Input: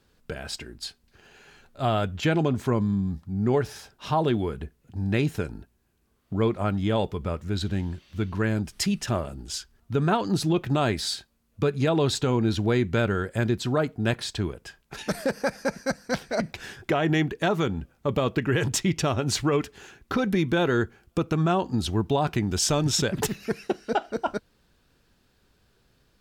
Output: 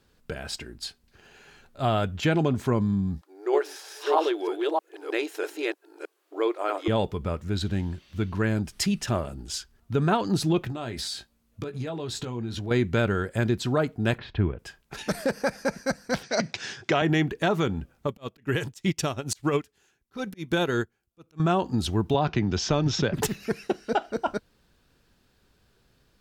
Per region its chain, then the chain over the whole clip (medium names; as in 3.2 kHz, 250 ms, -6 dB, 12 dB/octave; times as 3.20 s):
3.21–6.88 s: chunks repeated in reverse 316 ms, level -1 dB + brick-wall FIR high-pass 300 Hz
10.69–12.71 s: compression 12:1, threshold -29 dBFS + doubling 17 ms -7.5 dB
14.18–14.59 s: low-pass 2.8 kHz 24 dB/octave + bass shelf 170 Hz +7.5 dB
16.23–17.02 s: Chebyshev band-pass 110–6100 Hz, order 3 + treble shelf 2.8 kHz +11.5 dB
18.07–21.40 s: treble shelf 4.9 kHz +10.5 dB + slow attack 111 ms + upward expansion 2.5:1, over -34 dBFS
22.14–23.14 s: steep low-pass 6.4 kHz 48 dB/octave + treble shelf 4.4 kHz -7 dB + three bands compressed up and down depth 40%
whole clip: none